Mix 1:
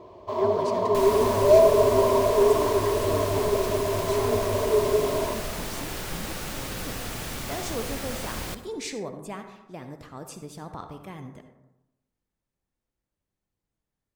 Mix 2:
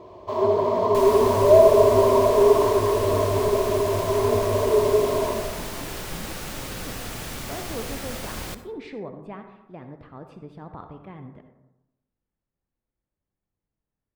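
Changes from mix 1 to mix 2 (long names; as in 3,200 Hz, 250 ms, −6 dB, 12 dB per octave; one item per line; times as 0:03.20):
speech: add high-frequency loss of the air 430 metres
first sound: send +7.0 dB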